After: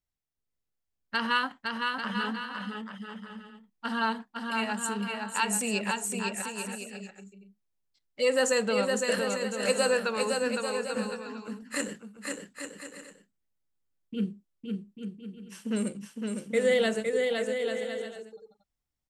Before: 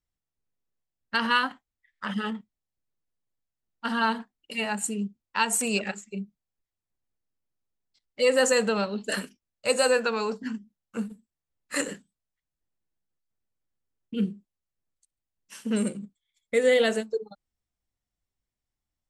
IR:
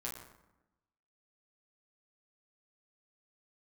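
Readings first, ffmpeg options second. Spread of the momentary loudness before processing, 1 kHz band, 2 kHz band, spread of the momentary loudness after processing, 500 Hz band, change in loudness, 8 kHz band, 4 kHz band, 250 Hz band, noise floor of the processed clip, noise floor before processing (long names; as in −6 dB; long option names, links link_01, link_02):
16 LU, −1.5 dB, −1.5 dB, 16 LU, −1.5 dB, −3.0 dB, −1.5 dB, −1.5 dB, −1.5 dB, −84 dBFS, below −85 dBFS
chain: -af "aecho=1:1:510|841.5|1057|1197|1288:0.631|0.398|0.251|0.158|0.1,volume=-3.5dB"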